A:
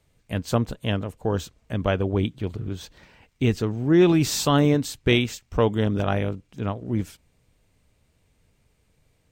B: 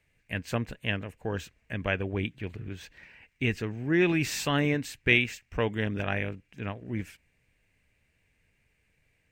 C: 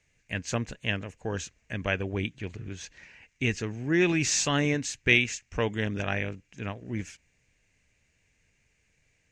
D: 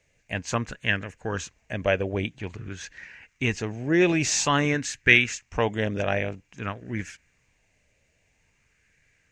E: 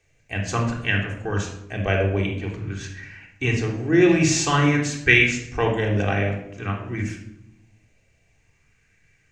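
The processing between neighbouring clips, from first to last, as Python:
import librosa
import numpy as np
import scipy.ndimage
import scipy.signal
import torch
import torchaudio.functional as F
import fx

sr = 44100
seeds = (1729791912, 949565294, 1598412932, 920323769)

y1 = fx.band_shelf(x, sr, hz=2100.0, db=12.0, octaves=1.0)
y1 = F.gain(torch.from_numpy(y1), -8.0).numpy()
y2 = fx.lowpass_res(y1, sr, hz=6600.0, q=4.4)
y3 = fx.bell_lfo(y2, sr, hz=0.5, low_hz=550.0, high_hz=1700.0, db=9)
y3 = F.gain(torch.from_numpy(y3), 1.5).numpy()
y4 = fx.room_shoebox(y3, sr, seeds[0], volume_m3=2200.0, walls='furnished', distance_m=3.6)
y4 = F.gain(torch.from_numpy(y4), -1.0).numpy()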